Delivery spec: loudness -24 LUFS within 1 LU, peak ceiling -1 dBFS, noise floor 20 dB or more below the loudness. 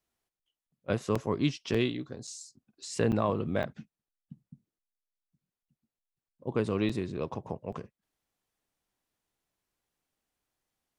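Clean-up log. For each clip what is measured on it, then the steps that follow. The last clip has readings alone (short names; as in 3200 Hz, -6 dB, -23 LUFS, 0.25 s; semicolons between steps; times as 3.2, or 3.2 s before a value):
dropouts 7; longest dropout 5.0 ms; loudness -32.0 LUFS; peak -14.0 dBFS; loudness target -24.0 LUFS
-> interpolate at 1.15/1.74/2.27/3.12/3.63/6.89/7.72, 5 ms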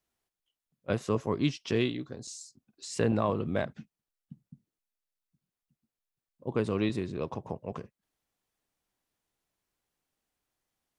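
dropouts 0; loudness -32.0 LUFS; peak -14.0 dBFS; loudness target -24.0 LUFS
-> gain +8 dB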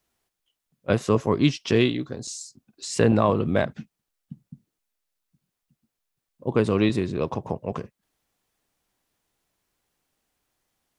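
loudness -24.0 LUFS; peak -6.0 dBFS; noise floor -83 dBFS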